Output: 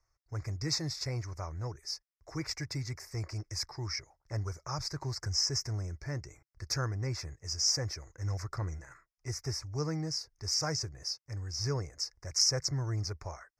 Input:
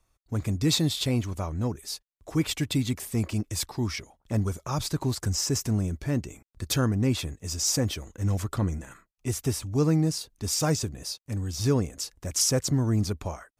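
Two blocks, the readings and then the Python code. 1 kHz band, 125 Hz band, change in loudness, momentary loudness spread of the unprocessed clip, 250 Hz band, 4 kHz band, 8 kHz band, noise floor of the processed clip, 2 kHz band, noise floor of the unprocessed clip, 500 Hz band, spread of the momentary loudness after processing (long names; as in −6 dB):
−6.0 dB, −8.0 dB, −6.5 dB, 9 LU, −15.0 dB, −2.0 dB, −5.5 dB, −82 dBFS, −5.5 dB, −75 dBFS, −10.0 dB, 11 LU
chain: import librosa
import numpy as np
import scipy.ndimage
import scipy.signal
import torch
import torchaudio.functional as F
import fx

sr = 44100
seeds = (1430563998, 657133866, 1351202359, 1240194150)

y = fx.curve_eq(x, sr, hz=(140.0, 230.0, 330.0, 2100.0, 3200.0, 5200.0, 8700.0), db=(0, -19, -4, 5, -26, 11, -12))
y = y * 10.0 ** (-7.5 / 20.0)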